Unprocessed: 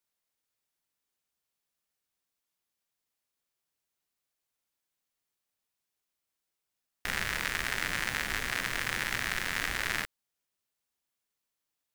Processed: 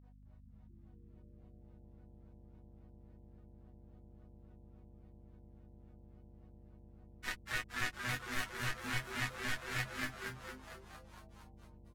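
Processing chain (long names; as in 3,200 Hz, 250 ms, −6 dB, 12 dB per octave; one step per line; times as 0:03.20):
low-pass that shuts in the quiet parts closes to 520 Hz
in parallel at +1.5 dB: brickwall limiter −23 dBFS, peak gain reduction 10.5 dB
on the sum: upward compression, threshold −47 dBFS
resonators tuned to a chord B3 major, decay 0.26 s
granular cloud 145 ms, grains 3.6 per second, pitch spread up and down by 0 semitones
mains hum 50 Hz, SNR 12 dB
echo with shifted repeats 229 ms, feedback 58%, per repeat −130 Hz, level −3 dB
one half of a high-frequency compander encoder only
level +10 dB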